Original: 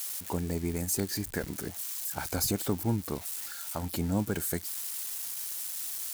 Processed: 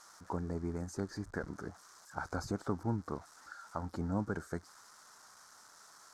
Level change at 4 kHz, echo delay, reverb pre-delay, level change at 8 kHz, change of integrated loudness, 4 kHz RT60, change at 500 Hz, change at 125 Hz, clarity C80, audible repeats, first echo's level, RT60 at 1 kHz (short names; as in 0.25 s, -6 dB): -16.5 dB, none, none, -20.5 dB, -7.5 dB, none, -5.0 dB, -6.0 dB, none, none, none, none